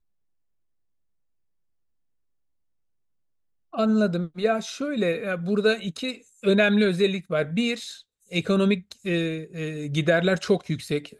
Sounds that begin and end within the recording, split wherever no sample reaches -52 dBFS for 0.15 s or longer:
3.73–8.02

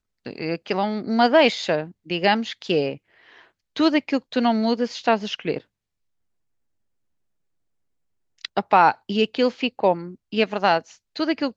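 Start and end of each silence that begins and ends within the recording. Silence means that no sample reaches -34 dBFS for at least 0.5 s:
2.95–3.76
5.58–8.45

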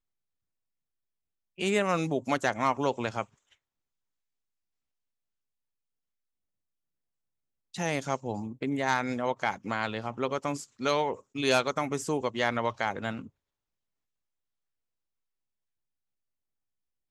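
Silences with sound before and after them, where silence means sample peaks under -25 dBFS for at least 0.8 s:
3.22–7.8

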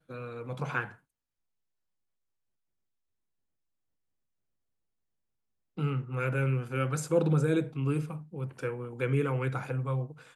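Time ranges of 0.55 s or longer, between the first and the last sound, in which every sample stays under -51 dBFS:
0.95–5.77

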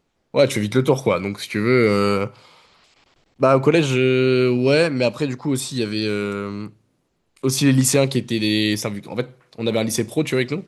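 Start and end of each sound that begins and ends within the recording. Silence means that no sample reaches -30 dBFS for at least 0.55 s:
3.41–6.68

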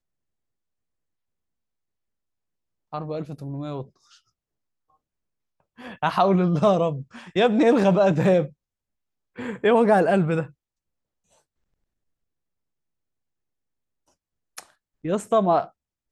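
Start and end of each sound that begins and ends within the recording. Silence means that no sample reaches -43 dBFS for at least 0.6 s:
2.93–4.15
5.79–8.5
9.36–10.5

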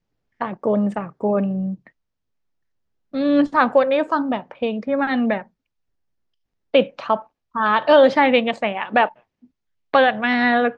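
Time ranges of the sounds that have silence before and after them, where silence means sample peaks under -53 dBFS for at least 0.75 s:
3.13–5.48

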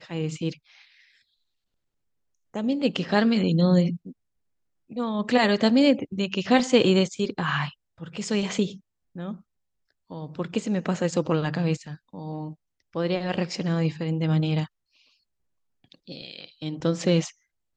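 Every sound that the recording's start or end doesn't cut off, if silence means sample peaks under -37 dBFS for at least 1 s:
2.54–14.66

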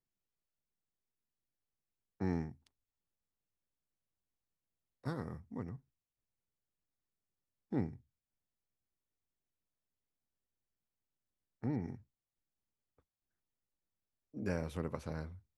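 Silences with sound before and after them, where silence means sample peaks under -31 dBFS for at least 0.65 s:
2.42–5.07
5.61–7.73
7.85–11.64
11.86–14.46

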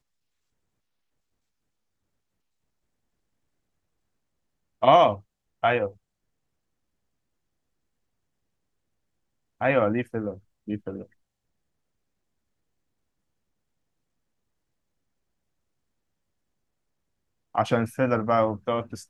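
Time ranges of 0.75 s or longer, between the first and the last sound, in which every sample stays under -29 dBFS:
5.88–9.61
11.01–17.55

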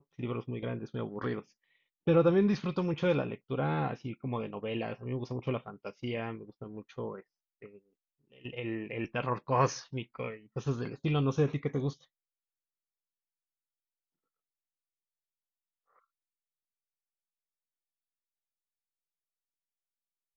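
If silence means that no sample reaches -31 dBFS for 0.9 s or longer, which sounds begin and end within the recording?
8.45–11.9

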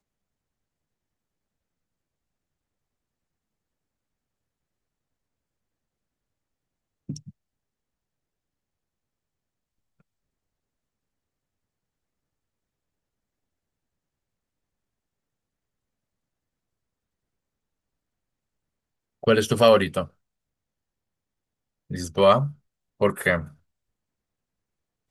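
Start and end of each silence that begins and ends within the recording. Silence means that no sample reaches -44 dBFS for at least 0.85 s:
7.3–19.23
20.08–21.9

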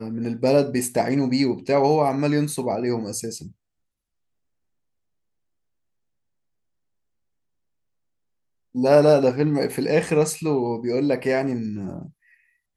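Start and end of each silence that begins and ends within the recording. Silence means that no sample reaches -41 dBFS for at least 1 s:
3.52–8.75

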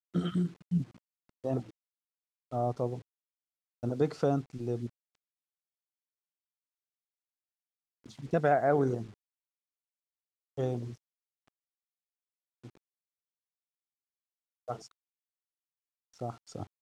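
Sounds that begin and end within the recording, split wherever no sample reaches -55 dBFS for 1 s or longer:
8.04–9.14
10.57–11.48
12.64–12.77
14.68–14.91

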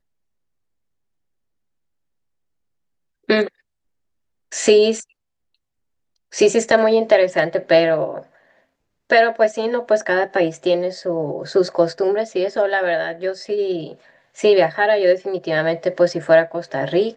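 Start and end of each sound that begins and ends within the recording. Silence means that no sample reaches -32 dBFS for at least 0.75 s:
3.29–3.48
4.52–5.03
6.33–8.21

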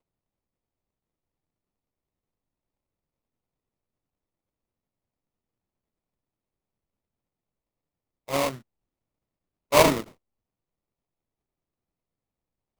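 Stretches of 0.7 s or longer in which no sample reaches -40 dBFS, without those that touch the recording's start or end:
8.58–9.72

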